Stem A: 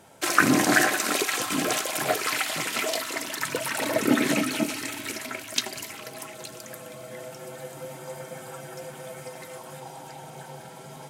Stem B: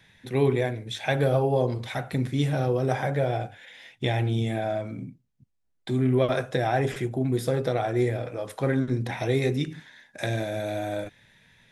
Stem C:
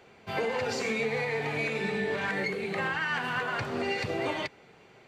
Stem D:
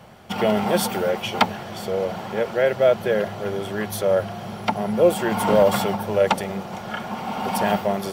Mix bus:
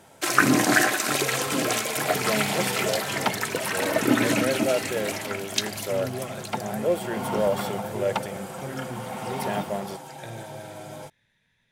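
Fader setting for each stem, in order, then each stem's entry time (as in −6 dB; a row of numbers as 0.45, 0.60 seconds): +0.5, −12.0, −6.0, −7.5 decibels; 0.00, 0.00, 0.85, 1.85 seconds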